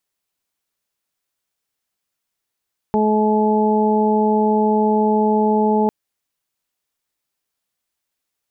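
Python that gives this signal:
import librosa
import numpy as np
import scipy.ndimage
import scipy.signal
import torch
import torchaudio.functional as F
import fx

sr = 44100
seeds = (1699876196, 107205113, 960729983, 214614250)

y = fx.additive_steady(sr, length_s=2.95, hz=214.0, level_db=-17, upper_db=(-1, -9, -2))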